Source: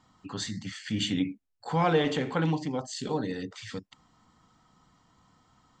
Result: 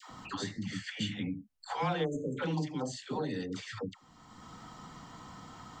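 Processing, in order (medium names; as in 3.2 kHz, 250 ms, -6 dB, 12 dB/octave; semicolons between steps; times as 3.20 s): 0.73–1.68 s: peaking EQ 330 Hz -9.5 dB 0.83 oct; 2.04–2.37 s: spectral selection erased 620–6200 Hz; phase dispersion lows, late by 103 ms, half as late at 680 Hz; three bands compressed up and down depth 70%; trim -4 dB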